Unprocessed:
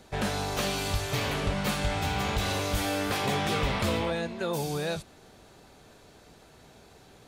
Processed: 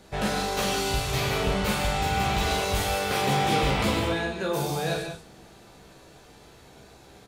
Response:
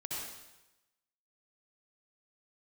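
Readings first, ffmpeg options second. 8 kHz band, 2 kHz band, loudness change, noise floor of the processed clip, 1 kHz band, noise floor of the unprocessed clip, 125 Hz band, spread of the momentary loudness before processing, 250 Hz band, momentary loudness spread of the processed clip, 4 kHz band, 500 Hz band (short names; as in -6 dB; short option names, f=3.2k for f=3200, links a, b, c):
+3.5 dB, +3.5 dB, +3.5 dB, -52 dBFS, +5.5 dB, -55 dBFS, +2.5 dB, 4 LU, +2.5 dB, 5 LU, +3.5 dB, +3.5 dB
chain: -filter_complex "[0:a]aecho=1:1:15|43:0.562|0.531,asplit=2[a][b];[1:a]atrim=start_sample=2205,afade=t=out:st=0.22:d=0.01,atrim=end_sample=10143,adelay=37[c];[b][c]afir=irnorm=-1:irlink=0,volume=-4.5dB[d];[a][d]amix=inputs=2:normalize=0"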